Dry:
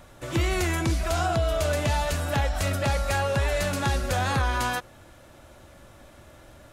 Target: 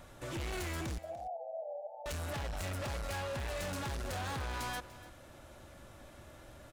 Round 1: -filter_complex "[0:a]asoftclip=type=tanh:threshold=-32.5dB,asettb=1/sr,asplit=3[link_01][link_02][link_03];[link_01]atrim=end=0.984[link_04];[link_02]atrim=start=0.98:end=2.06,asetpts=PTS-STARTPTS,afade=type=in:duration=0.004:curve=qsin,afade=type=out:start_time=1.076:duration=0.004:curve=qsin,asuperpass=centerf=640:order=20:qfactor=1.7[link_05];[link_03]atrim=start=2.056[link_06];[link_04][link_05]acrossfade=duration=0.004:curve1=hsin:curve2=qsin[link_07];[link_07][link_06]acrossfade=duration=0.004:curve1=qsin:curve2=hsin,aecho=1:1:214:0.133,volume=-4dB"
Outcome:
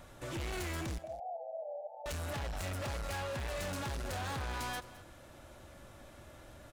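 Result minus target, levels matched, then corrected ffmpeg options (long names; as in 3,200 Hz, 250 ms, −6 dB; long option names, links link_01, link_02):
echo 79 ms early
-filter_complex "[0:a]asoftclip=type=tanh:threshold=-32.5dB,asettb=1/sr,asplit=3[link_01][link_02][link_03];[link_01]atrim=end=0.984[link_04];[link_02]atrim=start=0.98:end=2.06,asetpts=PTS-STARTPTS,afade=type=in:duration=0.004:curve=qsin,afade=type=out:start_time=1.076:duration=0.004:curve=qsin,asuperpass=centerf=640:order=20:qfactor=1.7[link_05];[link_03]atrim=start=2.056[link_06];[link_04][link_05]acrossfade=duration=0.004:curve1=hsin:curve2=qsin[link_07];[link_07][link_06]acrossfade=duration=0.004:curve1=qsin:curve2=hsin,aecho=1:1:293:0.133,volume=-4dB"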